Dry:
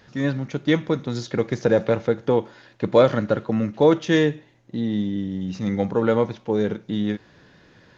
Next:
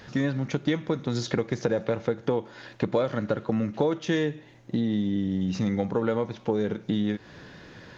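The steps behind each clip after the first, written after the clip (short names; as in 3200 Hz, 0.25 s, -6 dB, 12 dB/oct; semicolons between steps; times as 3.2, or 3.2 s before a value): compressor 6:1, threshold -29 dBFS, peak gain reduction 17.5 dB; gain +6 dB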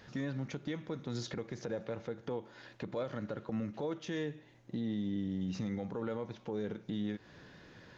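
limiter -19 dBFS, peak gain reduction 8.5 dB; gain -9 dB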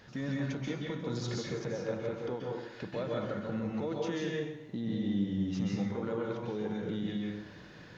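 plate-style reverb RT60 0.76 s, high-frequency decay 0.85×, pre-delay 0.12 s, DRR -2.5 dB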